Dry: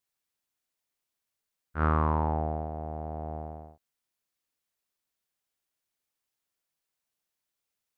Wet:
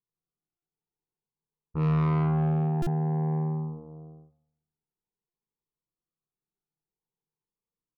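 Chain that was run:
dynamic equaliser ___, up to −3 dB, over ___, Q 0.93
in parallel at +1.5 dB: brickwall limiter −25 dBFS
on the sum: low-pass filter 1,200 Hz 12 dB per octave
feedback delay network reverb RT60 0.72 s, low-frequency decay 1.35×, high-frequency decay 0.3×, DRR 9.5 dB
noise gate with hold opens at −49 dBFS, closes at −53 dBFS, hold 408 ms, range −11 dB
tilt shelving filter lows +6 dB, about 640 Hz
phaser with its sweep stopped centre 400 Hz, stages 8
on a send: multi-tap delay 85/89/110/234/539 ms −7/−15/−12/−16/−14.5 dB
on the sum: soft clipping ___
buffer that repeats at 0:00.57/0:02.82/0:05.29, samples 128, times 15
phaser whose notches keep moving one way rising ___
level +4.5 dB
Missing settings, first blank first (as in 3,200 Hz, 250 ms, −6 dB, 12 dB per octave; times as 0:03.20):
210 Hz, −39 dBFS, −25.5 dBFS, 0.51 Hz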